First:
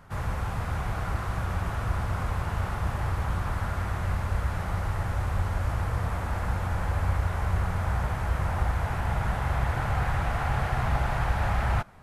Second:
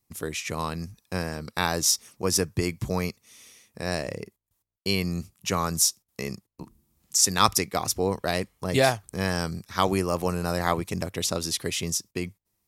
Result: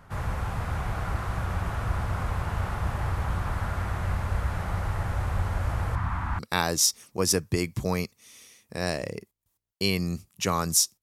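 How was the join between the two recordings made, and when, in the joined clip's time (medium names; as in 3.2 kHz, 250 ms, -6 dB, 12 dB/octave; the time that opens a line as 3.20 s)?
first
5.95–6.39 s: FFT filter 300 Hz 0 dB, 470 Hz -18 dB, 990 Hz +5 dB, 11 kHz -12 dB
6.39 s: go over to second from 1.44 s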